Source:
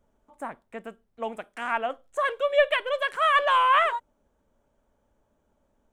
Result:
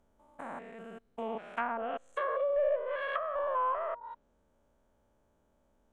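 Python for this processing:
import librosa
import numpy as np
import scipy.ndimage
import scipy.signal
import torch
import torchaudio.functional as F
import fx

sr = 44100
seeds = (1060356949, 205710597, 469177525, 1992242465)

y = fx.spec_steps(x, sr, hold_ms=200)
y = fx.env_lowpass_down(y, sr, base_hz=640.0, full_db=-25.5)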